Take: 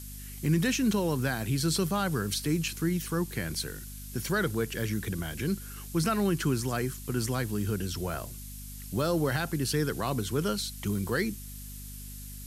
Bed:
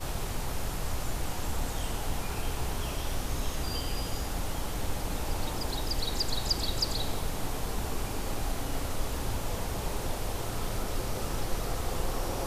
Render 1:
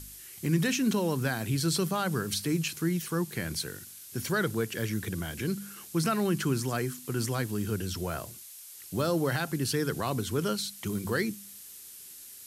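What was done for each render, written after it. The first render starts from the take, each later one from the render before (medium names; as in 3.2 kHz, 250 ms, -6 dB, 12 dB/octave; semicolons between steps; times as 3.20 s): de-hum 50 Hz, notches 5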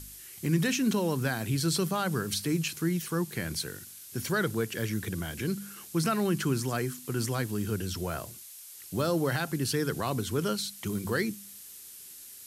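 no audible change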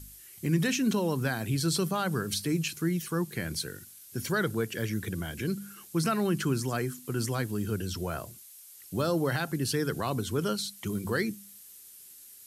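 noise reduction 6 dB, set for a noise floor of -48 dBFS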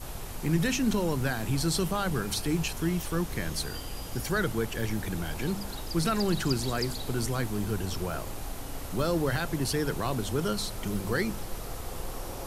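add bed -5.5 dB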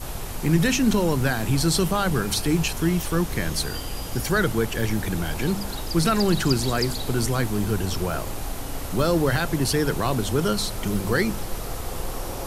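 trim +6.5 dB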